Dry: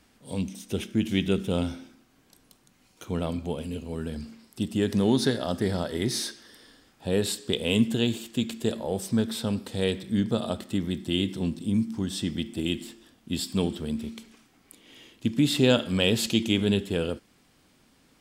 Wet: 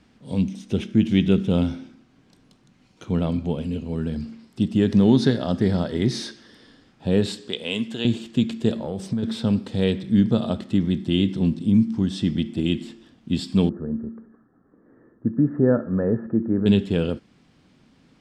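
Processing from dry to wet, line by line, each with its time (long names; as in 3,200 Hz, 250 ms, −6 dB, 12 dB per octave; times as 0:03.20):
0:07.48–0:08.05: high-pass filter 880 Hz 6 dB per octave
0:08.81–0:09.23: downward compressor 12 to 1, threshold −27 dBFS
0:13.69–0:16.66: Chebyshev low-pass with heavy ripple 1,800 Hz, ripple 6 dB
whole clip: low-pass filter 5,300 Hz 12 dB per octave; parametric band 160 Hz +8 dB 2 octaves; level +1 dB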